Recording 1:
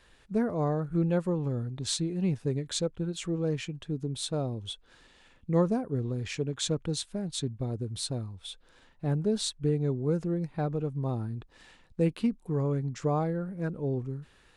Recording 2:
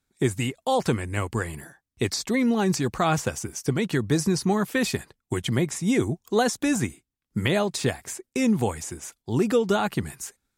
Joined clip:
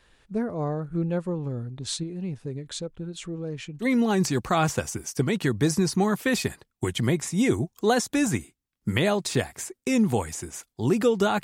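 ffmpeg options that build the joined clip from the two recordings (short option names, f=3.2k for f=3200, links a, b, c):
-filter_complex "[0:a]asettb=1/sr,asplit=3[a][b][c];[a]atrim=end=2.034[d];[b]atrim=start=2.03:end=3.87,asetpts=PTS-STARTPTS,afade=t=in:d=0.004:c=qsin,afade=t=out:st=1.836:d=0.004:c=qsin,acompressor=threshold=-34dB:ratio=1.5:attack=3.2:release=140:knee=1:detection=peak[e];[c]atrim=start=3.866[f];[d][e]acrossfade=d=0.004:c1=hsin:c2=qsin[g];[g][f]acrossfade=d=0.004:c1=qsin:c2=hsin,apad=whole_dur=11.43,atrim=end=11.43,atrim=end=3.87,asetpts=PTS-STARTPTS[h];[1:a]atrim=start=2.28:end=9.92,asetpts=PTS-STARTPTS[i];[h][i]acrossfade=d=0.08:c1=tri:c2=tri"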